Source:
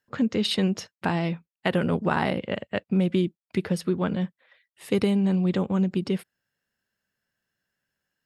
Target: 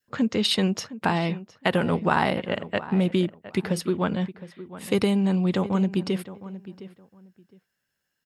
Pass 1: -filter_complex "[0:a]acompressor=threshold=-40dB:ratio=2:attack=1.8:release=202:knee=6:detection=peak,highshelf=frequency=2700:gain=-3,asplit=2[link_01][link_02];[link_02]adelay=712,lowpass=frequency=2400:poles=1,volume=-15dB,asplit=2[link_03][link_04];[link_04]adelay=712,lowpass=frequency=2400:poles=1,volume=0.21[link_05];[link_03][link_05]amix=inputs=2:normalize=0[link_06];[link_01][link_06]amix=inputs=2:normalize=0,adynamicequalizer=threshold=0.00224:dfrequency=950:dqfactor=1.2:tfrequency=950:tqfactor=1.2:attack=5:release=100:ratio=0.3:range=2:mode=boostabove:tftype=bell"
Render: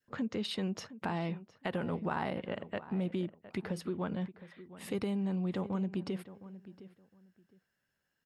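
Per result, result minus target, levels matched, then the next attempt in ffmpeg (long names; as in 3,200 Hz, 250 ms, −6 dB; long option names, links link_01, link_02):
downward compressor: peak gain reduction +13.5 dB; 4,000 Hz band −3.5 dB
-filter_complex "[0:a]highshelf=frequency=2700:gain=-3,asplit=2[link_01][link_02];[link_02]adelay=712,lowpass=frequency=2400:poles=1,volume=-15dB,asplit=2[link_03][link_04];[link_04]adelay=712,lowpass=frequency=2400:poles=1,volume=0.21[link_05];[link_03][link_05]amix=inputs=2:normalize=0[link_06];[link_01][link_06]amix=inputs=2:normalize=0,adynamicequalizer=threshold=0.00224:dfrequency=950:dqfactor=1.2:tfrequency=950:tqfactor=1.2:attack=5:release=100:ratio=0.3:range=2:mode=boostabove:tftype=bell"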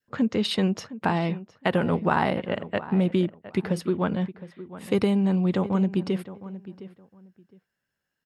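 4,000 Hz band −4.5 dB
-filter_complex "[0:a]highshelf=frequency=2700:gain=5,asplit=2[link_01][link_02];[link_02]adelay=712,lowpass=frequency=2400:poles=1,volume=-15dB,asplit=2[link_03][link_04];[link_04]adelay=712,lowpass=frequency=2400:poles=1,volume=0.21[link_05];[link_03][link_05]amix=inputs=2:normalize=0[link_06];[link_01][link_06]amix=inputs=2:normalize=0,adynamicequalizer=threshold=0.00224:dfrequency=950:dqfactor=1.2:tfrequency=950:tqfactor=1.2:attack=5:release=100:ratio=0.3:range=2:mode=boostabove:tftype=bell"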